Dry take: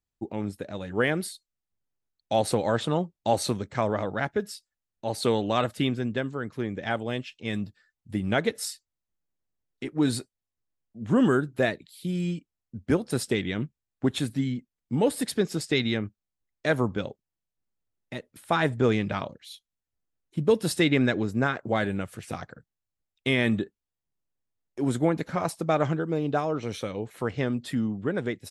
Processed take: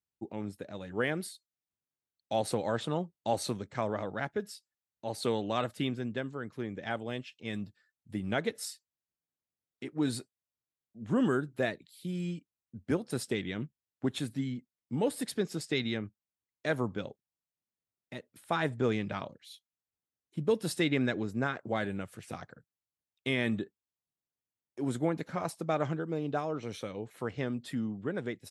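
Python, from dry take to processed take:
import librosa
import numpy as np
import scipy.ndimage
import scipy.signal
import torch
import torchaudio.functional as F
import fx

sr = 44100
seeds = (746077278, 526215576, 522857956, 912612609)

y = scipy.signal.sosfilt(scipy.signal.butter(2, 84.0, 'highpass', fs=sr, output='sos'), x)
y = y * librosa.db_to_amplitude(-6.5)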